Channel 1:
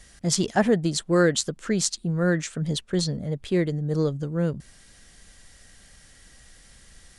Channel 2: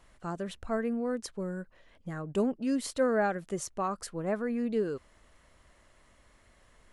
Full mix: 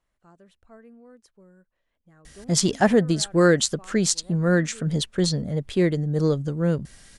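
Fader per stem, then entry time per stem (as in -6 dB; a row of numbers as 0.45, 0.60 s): +2.5, -17.5 dB; 2.25, 0.00 s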